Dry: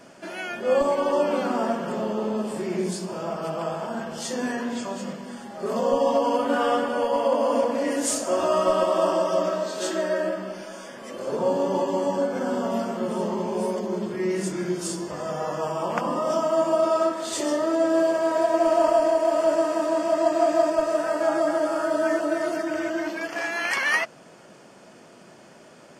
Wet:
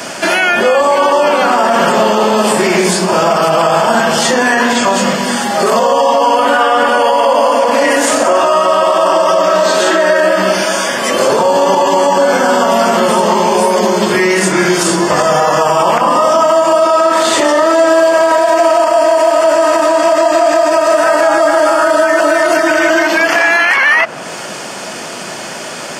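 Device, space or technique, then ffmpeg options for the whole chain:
mastering chain: -filter_complex "[0:a]highpass=59,equalizer=f=820:t=o:w=0.77:g=2.5,acrossover=split=510|2500[a][b][c];[a]acompressor=threshold=-32dB:ratio=4[d];[b]acompressor=threshold=-21dB:ratio=4[e];[c]acompressor=threshold=-49dB:ratio=4[f];[d][e][f]amix=inputs=3:normalize=0,acompressor=threshold=-26dB:ratio=2.5,tiltshelf=f=1.1k:g=-6,alimiter=level_in=26dB:limit=-1dB:release=50:level=0:latency=1,volume=-1dB"

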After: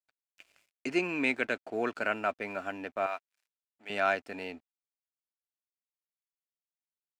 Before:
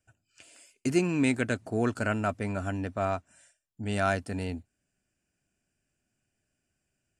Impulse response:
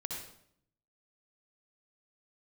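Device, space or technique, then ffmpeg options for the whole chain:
pocket radio on a weak battery: -filter_complex "[0:a]highpass=390,lowpass=4k,aeval=exprs='sgn(val(0))*max(abs(val(0))-0.00112,0)':c=same,equalizer=f=2.4k:t=o:w=0.44:g=5.5,asettb=1/sr,asplit=3[a][b][c];[a]atrim=end=3.064[d];[b]atrim=start=3.06:end=3.9,asetpts=PTS-STARTPTS,afade=t=in:d=0.004:c=qsin,afade=t=out:st=0.836:d=0.004:c=qsin,highpass=f=1.2k:p=1[e];[c]atrim=start=3.896[f];[d][e]acrossfade=d=0.004:c1=hsin:c2=qsin[g];[g][f]acrossfade=d=0.004:c1=qsin:c2=hsin"

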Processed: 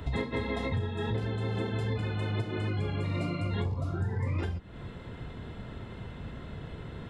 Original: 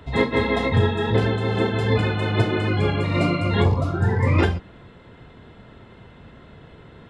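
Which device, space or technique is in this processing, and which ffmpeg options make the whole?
ASMR close-microphone chain: -af "lowshelf=f=180:g=7.5,acompressor=threshold=-29dB:ratio=8,highshelf=f=6.4k:g=7"

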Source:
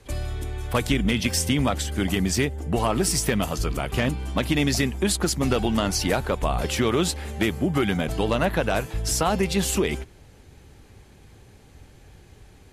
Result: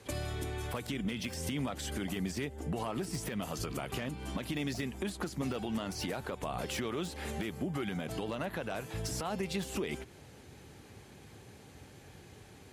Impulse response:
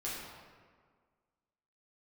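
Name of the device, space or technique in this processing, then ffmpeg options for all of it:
podcast mastering chain: -af "highpass=110,deesser=0.6,acompressor=threshold=-32dB:ratio=4,alimiter=level_in=1dB:limit=-24dB:level=0:latency=1:release=51,volume=-1dB" -ar 48000 -c:a libmp3lame -b:a 96k

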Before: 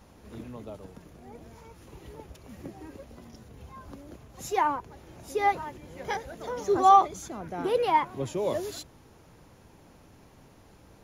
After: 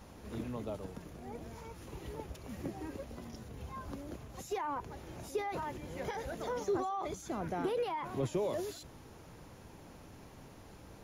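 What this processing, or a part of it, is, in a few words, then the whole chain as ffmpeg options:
de-esser from a sidechain: -filter_complex "[0:a]asplit=2[a][b];[b]highpass=f=5k:p=1,apad=whole_len=486825[c];[a][c]sidechaincompress=threshold=-49dB:ratio=12:attack=0.78:release=31,volume=1.5dB"

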